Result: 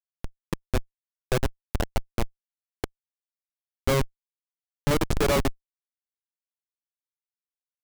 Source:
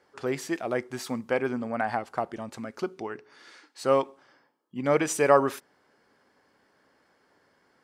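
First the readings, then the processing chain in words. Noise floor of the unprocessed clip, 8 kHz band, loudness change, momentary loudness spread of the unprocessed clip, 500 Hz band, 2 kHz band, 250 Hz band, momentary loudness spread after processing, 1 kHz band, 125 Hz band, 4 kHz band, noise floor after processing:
-67 dBFS, -1.0 dB, -1.0 dB, 17 LU, -4.0 dB, -2.0 dB, -1.0 dB, 15 LU, -5.5 dB, +9.5 dB, +6.5 dB, under -85 dBFS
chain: high shelf 9600 Hz +6.5 dB; Schmitt trigger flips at -20.5 dBFS; gain +9 dB

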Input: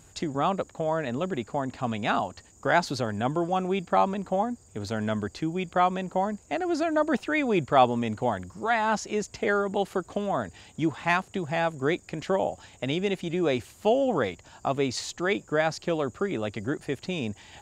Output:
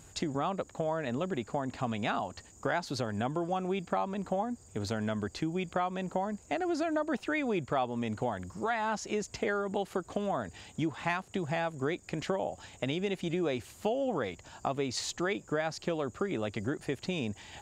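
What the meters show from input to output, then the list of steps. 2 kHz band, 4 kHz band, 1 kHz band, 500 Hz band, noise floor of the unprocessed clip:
-6.5 dB, -4.5 dB, -7.5 dB, -6.0 dB, -56 dBFS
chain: compressor 4:1, threshold -29 dBFS, peak gain reduction 13 dB

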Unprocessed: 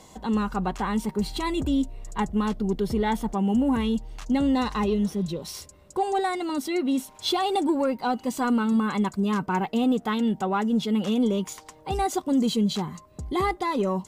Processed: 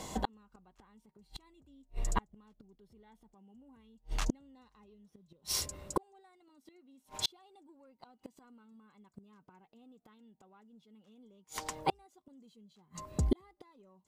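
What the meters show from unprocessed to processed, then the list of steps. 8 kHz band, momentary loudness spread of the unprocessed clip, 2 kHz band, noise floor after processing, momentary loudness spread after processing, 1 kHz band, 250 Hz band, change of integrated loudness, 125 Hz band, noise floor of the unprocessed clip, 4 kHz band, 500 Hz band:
-4.0 dB, 8 LU, -16.5 dB, -75 dBFS, 19 LU, -16.5 dB, -22.5 dB, -12.0 dB, -12.0 dB, -52 dBFS, -9.5 dB, -19.0 dB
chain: flipped gate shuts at -23 dBFS, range -42 dB; gain +5.5 dB

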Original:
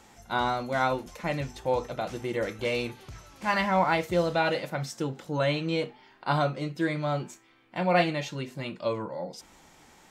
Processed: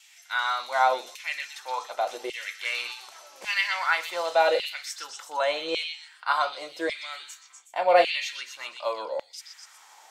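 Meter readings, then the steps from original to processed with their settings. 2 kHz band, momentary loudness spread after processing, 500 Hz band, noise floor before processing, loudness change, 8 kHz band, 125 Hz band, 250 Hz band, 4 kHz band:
+4.0 dB, 15 LU, +1.0 dB, -57 dBFS, +1.5 dB, +5.5 dB, under -30 dB, -13.5 dB, +6.0 dB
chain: gate with hold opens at -50 dBFS; tone controls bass -10 dB, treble +4 dB; on a send: delay with a stepping band-pass 0.123 s, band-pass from 3900 Hz, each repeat 0.7 oct, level -2 dB; on the sum: LFO high-pass saw down 0.87 Hz 470–2900 Hz

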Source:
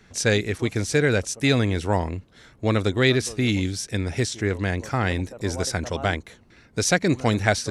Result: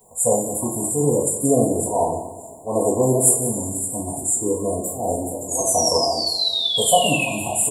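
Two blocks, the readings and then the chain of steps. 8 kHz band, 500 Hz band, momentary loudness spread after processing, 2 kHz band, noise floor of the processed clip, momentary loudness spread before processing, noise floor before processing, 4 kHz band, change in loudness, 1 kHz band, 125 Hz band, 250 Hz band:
+12.0 dB, +4.5 dB, 9 LU, n/a, -39 dBFS, 7 LU, -55 dBFS, +7.0 dB, +4.0 dB, +6.5 dB, -4.5 dB, +0.5 dB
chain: RIAA curve recording; FFT band-reject 1100–7000 Hz; bell 670 Hz +10 dB 0.27 oct; LFO notch saw up 0.3 Hz 270–3800 Hz; painted sound fall, 5.46–7.32, 2400–7000 Hz -32 dBFS; auto swell 0.162 s; echo 0.18 s -15 dB; two-slope reverb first 0.38 s, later 2.4 s, from -19 dB, DRR -8 dB; gain +1 dB

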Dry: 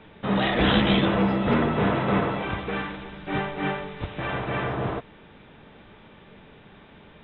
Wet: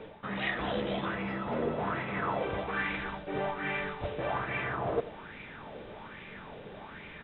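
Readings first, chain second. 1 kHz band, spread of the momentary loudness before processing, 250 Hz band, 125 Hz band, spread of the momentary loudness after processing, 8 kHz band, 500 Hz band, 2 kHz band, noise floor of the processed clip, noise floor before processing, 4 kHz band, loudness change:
-6.5 dB, 12 LU, -13.0 dB, -12.0 dB, 13 LU, n/a, -6.5 dB, -4.5 dB, -47 dBFS, -51 dBFS, -12.5 dB, -8.5 dB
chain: reverse; compressor 6:1, threshold -35 dBFS, peak gain reduction 18 dB; reverse; echo 85 ms -16 dB; LFO bell 1.2 Hz 470–2300 Hz +13 dB

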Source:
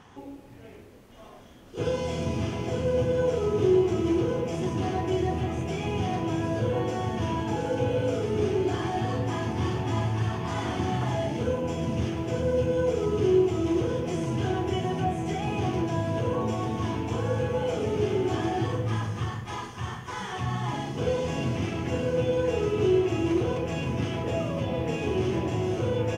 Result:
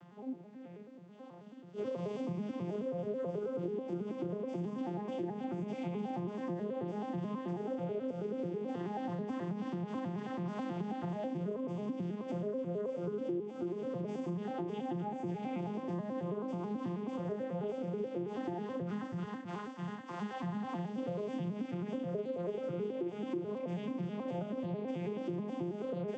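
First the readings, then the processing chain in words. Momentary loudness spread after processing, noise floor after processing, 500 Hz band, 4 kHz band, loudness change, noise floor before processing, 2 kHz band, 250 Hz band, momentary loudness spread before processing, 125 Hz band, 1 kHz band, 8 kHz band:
3 LU, -50 dBFS, -11.5 dB, -18.0 dB, -11.0 dB, -47 dBFS, -15.0 dB, -8.0 dB, 5 LU, -14.0 dB, -11.5 dB, under -20 dB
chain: arpeggiated vocoder minor triad, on F3, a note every 0.108 s; bell 140 Hz +3 dB 0.35 oct; compressor 6:1, threshold -31 dBFS, peak gain reduction 15 dB; gain -3.5 dB

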